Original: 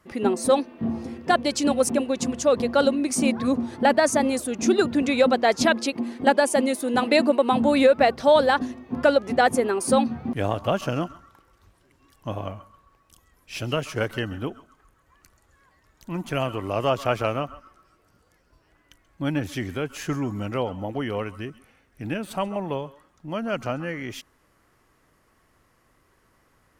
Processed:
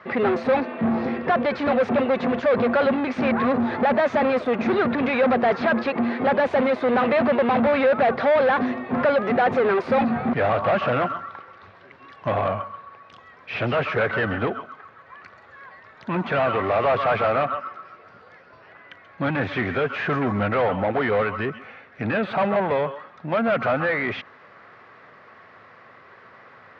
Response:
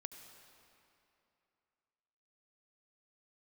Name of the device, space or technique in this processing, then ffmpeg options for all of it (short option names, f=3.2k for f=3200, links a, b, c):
overdrive pedal into a guitar cabinet: -filter_complex "[0:a]asplit=2[a][b];[b]highpass=f=720:p=1,volume=32dB,asoftclip=type=tanh:threshold=-6.5dB[c];[a][c]amix=inputs=2:normalize=0,lowpass=f=2.1k:p=1,volume=-6dB,highpass=90,equalizer=f=100:t=q:w=4:g=5,equalizer=f=310:t=q:w=4:g=-10,equalizer=f=940:t=q:w=4:g=-4,equalizer=f=3k:t=q:w=4:g=-6,lowpass=f=3.8k:w=0.5412,lowpass=f=3.8k:w=1.3066,acrossover=split=3200[d][e];[e]acompressor=threshold=-46dB:ratio=4:attack=1:release=60[f];[d][f]amix=inputs=2:normalize=0,highpass=62,volume=-4dB"